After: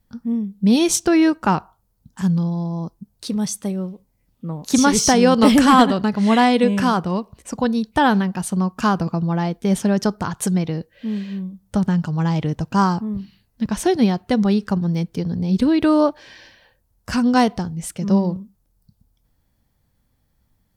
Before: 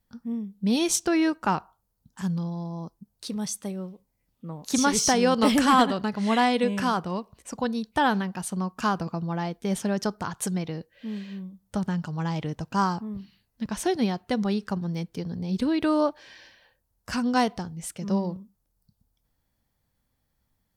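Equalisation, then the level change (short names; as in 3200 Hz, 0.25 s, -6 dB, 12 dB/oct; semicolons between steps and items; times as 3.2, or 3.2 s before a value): low shelf 360 Hz +5.5 dB; +5.0 dB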